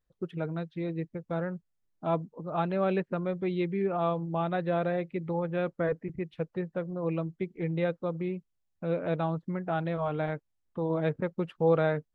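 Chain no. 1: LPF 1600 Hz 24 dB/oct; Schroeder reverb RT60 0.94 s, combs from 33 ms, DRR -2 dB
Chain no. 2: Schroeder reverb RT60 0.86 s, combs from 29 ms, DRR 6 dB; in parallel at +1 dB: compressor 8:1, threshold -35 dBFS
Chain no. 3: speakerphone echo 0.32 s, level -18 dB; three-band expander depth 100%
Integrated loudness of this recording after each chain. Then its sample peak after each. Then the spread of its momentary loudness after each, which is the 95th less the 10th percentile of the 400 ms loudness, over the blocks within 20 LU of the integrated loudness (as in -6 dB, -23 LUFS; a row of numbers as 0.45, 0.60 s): -27.0, -28.0, -30.5 LUFS; -10.0, -11.5, -8.0 dBFS; 7, 7, 13 LU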